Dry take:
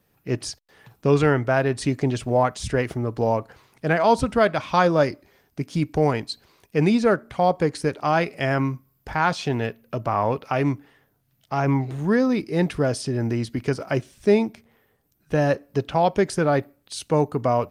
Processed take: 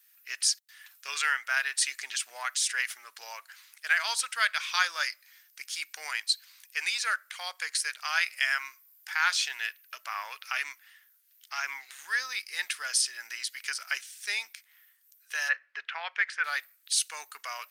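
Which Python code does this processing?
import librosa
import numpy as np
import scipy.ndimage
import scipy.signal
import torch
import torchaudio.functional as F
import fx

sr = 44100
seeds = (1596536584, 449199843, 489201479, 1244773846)

y = fx.lowpass_res(x, sr, hz=2000.0, q=1.6, at=(15.48, 16.43), fade=0.02)
y = scipy.signal.sosfilt(scipy.signal.cheby1(3, 1.0, 1600.0, 'highpass', fs=sr, output='sos'), y)
y = fx.high_shelf(y, sr, hz=4200.0, db=10.5)
y = y * librosa.db_to_amplitude(1.0)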